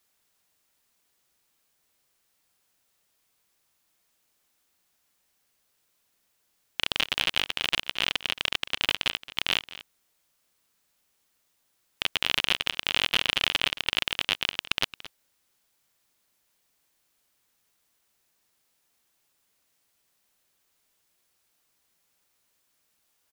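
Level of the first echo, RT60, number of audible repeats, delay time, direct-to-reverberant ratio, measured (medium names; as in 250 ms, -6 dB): -16.5 dB, no reverb, 1, 222 ms, no reverb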